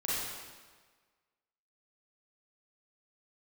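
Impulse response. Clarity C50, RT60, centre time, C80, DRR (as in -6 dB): -4.0 dB, 1.5 s, 116 ms, -0.5 dB, -8.5 dB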